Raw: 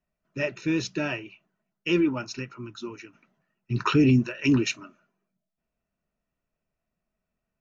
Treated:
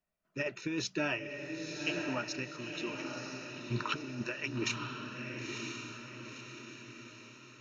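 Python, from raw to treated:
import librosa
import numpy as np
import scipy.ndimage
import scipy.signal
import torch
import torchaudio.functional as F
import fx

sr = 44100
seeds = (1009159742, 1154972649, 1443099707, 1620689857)

p1 = fx.low_shelf(x, sr, hz=270.0, db=-7.0)
p2 = fx.over_compress(p1, sr, threshold_db=-28.0, ratio=-0.5)
p3 = p2 + fx.echo_diffused(p2, sr, ms=975, feedback_pct=50, wet_db=-4.0, dry=0)
y = p3 * librosa.db_to_amplitude(-6.0)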